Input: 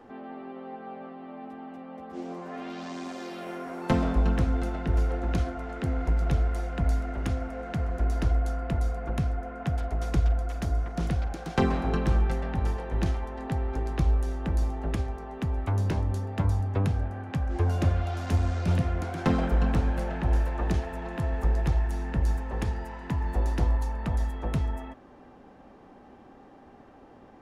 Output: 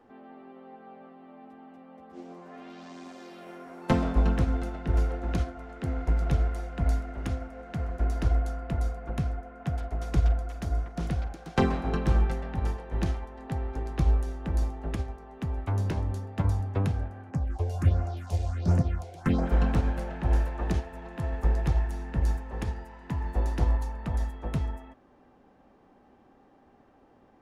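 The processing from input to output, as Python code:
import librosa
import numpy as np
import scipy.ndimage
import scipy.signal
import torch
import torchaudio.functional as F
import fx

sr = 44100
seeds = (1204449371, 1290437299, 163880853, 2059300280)

y = fx.phaser_stages(x, sr, stages=4, low_hz=200.0, high_hz=3500.0, hz=1.4, feedback_pct=25, at=(17.29, 19.45), fade=0.02)
y = fx.upward_expand(y, sr, threshold_db=-37.0, expansion=1.5)
y = y * 10.0 ** (2.0 / 20.0)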